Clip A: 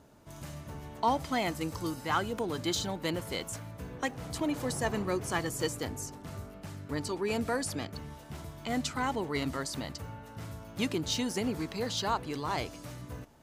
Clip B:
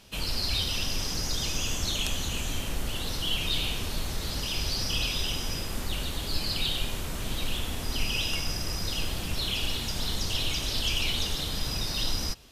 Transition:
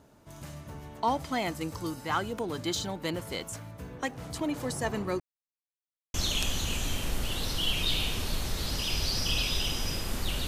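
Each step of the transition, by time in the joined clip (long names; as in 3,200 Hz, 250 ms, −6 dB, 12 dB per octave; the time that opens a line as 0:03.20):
clip A
0:05.20–0:06.14: silence
0:06.14: continue with clip B from 0:01.78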